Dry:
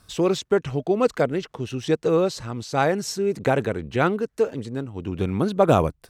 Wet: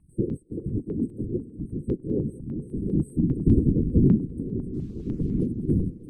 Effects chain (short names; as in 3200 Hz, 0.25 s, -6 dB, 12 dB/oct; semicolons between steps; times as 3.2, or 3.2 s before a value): bin magnitudes rounded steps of 15 dB; 2.93–4.21 low shelf 460 Hz +10.5 dB; FFT band-reject 360–8100 Hz; 4.74–5.46 requantised 10-bit, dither triangular; whisperiser; air absorption 96 m; diffused feedback echo 0.451 s, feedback 44%, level -15 dB; stepped notch 10 Hz 510–5000 Hz